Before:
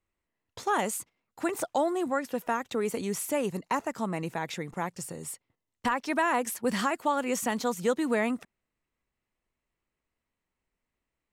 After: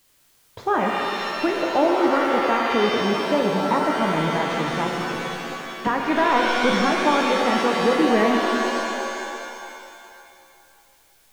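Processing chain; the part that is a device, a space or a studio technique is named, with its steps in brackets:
de-essing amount 90%
0:05.16–0:05.87: high-pass filter 200 Hz 24 dB per octave
cassette deck with a dirty head (head-to-tape spacing loss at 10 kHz 25 dB; tape wow and flutter 13 cents; white noise bed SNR 36 dB)
reverb with rising layers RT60 2.4 s, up +7 semitones, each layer −2 dB, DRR 1 dB
level +7.5 dB

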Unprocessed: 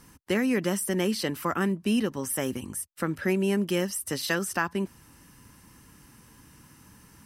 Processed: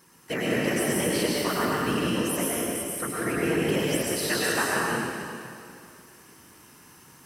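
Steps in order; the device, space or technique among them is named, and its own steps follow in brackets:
whispering ghost (random phases in short frames; high-pass filter 280 Hz 6 dB per octave; convolution reverb RT60 2.4 s, pre-delay 96 ms, DRR −5.5 dB)
level −2 dB

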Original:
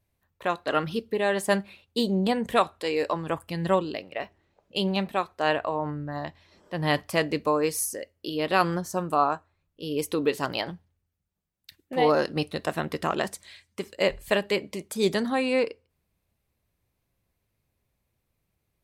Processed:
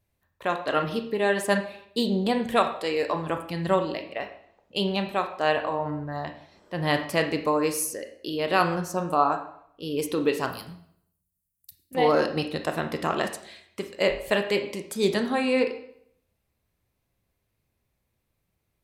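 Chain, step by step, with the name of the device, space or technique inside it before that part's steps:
0:10.48–0:11.95: drawn EQ curve 140 Hz 0 dB, 750 Hz −28 dB, 3,300 Hz −15 dB, 10,000 Hz +12 dB
filtered reverb send (on a send: high-pass filter 210 Hz + low-pass filter 4,800 Hz 12 dB per octave + convolution reverb RT60 0.70 s, pre-delay 23 ms, DRR 6 dB)

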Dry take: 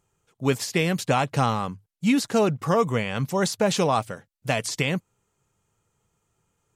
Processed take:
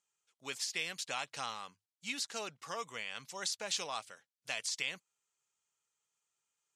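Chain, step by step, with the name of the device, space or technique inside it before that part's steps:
piezo pickup straight into a mixer (low-pass filter 5,400 Hz 12 dB per octave; first difference)

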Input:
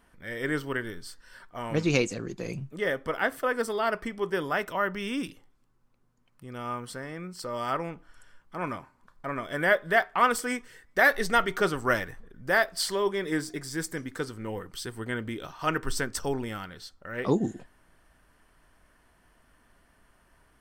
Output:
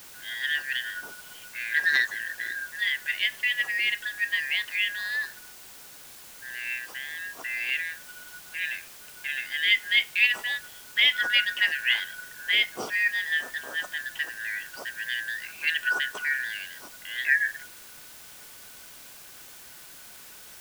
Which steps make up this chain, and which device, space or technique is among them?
split-band scrambled radio (band-splitting scrambler in four parts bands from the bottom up 4123; band-pass filter 320–3,200 Hz; white noise bed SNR 17 dB)
level +2 dB

